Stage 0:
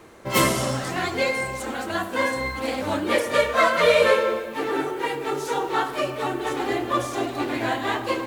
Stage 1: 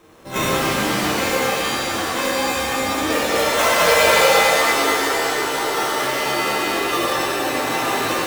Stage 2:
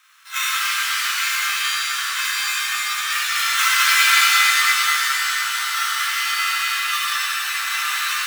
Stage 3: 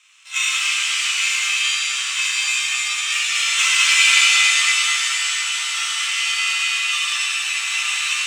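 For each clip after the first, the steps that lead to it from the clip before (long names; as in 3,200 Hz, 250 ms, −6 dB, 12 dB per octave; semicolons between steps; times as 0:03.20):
sample-rate reduction 4,700 Hz, jitter 0%; reverb with rising layers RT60 3 s, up +7 semitones, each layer −2 dB, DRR −6.5 dB; level −5.5 dB
elliptic high-pass filter 1,300 Hz, stop band 80 dB; level +3 dB
drawn EQ curve 220 Hz 0 dB, 390 Hz −12 dB, 550 Hz +5 dB, 1,600 Hz −7 dB, 2,600 Hz +11 dB, 4,300 Hz +2 dB, 7,800 Hz +10 dB, 13,000 Hz −16 dB; level −3.5 dB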